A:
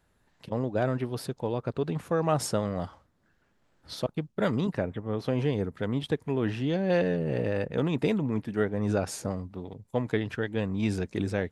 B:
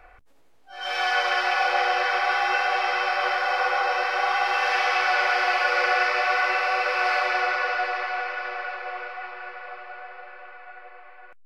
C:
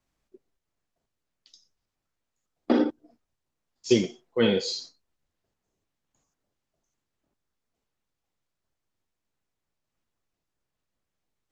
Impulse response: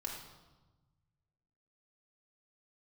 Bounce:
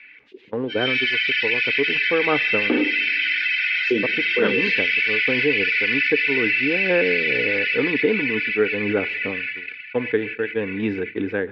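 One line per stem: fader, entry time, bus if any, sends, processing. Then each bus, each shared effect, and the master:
+2.5 dB, 0.00 s, no bus, send -22.5 dB, upward expander 2.5:1, over -44 dBFS
+2.5 dB, 0.00 s, bus A, send -17 dB, elliptic high-pass 2100 Hz, stop band 50 dB; AGC gain up to 5 dB
+1.0 dB, 0.00 s, bus A, send -22 dB, dry
bus A: 0.0 dB, reverb removal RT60 0.87 s; compressor 2:1, threshold -30 dBFS, peak gain reduction 9.5 dB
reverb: on, RT60 1.2 s, pre-delay 3 ms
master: gate -41 dBFS, range -18 dB; speaker cabinet 150–3300 Hz, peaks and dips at 160 Hz -9 dB, 290 Hz +6 dB, 450 Hz +9 dB, 640 Hz -8 dB, 1600 Hz +8 dB, 2600 Hz +3 dB; fast leveller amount 50%

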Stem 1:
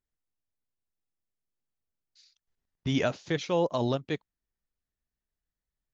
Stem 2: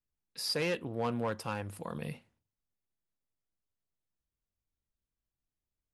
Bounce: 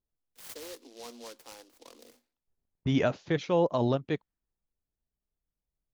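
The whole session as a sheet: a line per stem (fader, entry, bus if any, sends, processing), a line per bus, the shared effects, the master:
+1.5 dB, 0.00 s, no send, low-pass opened by the level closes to 880 Hz, open at -27.5 dBFS; high shelf 3100 Hz -9.5 dB
-11.0 dB, 0.00 s, no send, steep high-pass 240 Hz 96 dB/oct; noise-modulated delay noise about 4200 Hz, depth 0.14 ms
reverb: off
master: dry

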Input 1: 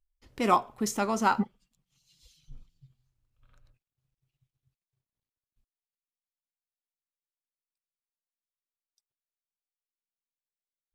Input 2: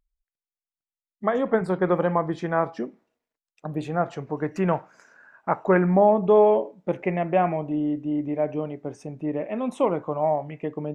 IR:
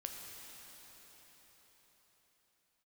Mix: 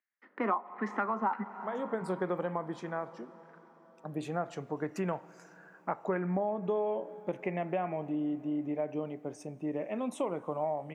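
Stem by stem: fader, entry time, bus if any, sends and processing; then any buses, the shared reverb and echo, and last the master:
-2.5 dB, 0.00 s, send -11 dB, steep high-pass 190 Hz 72 dB/oct; bell 1900 Hz +10.5 dB 0.66 oct; LFO low-pass saw down 1.5 Hz 880–2000 Hz
-6.5 dB, 0.40 s, send -17 dB, HPF 140 Hz; high shelf 7300 Hz +11 dB; auto duck -14 dB, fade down 1.15 s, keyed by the first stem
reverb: on, pre-delay 6 ms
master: compressor 5:1, threshold -29 dBFS, peak gain reduction 16.5 dB

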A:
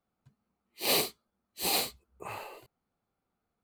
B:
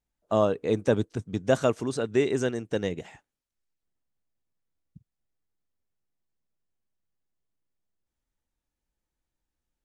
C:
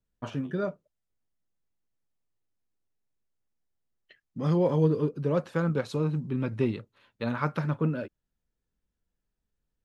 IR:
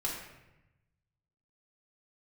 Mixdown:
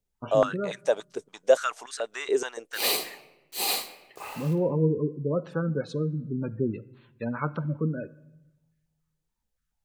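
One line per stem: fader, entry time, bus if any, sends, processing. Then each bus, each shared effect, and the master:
-1.0 dB, 1.95 s, send -7 dB, HPF 550 Hz 6 dB/oct; bit-crush 8-bit
-6.0 dB, 0.00 s, no send, high shelf 2600 Hz +9 dB; stepped high-pass 7 Hz 420–1700 Hz
-1.5 dB, 0.00 s, send -18.5 dB, spectral gate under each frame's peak -20 dB strong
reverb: on, RT60 0.95 s, pre-delay 4 ms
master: dry

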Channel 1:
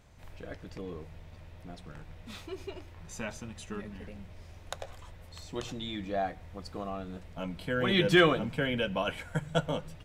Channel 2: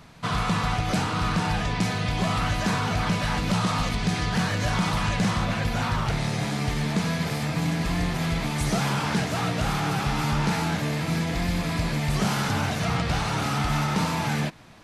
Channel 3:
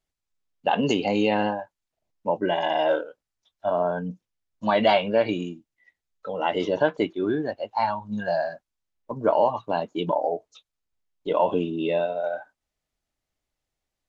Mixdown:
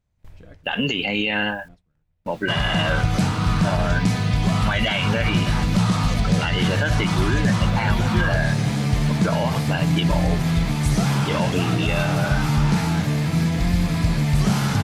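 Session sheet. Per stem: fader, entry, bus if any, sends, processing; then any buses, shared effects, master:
0.0 dB, 0.00 s, no bus, no send, auto duck -9 dB, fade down 0.45 s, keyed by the third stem
0.0 dB, 2.25 s, bus A, no send, dry
-3.0 dB, 0.00 s, bus A, no send, band shelf 2200 Hz +15.5 dB
bus A: 0.0 dB, bit-crush 10-bit; limiter -13.5 dBFS, peak gain reduction 11 dB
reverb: off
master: tone controls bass +8 dB, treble +2 dB; gate with hold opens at -36 dBFS

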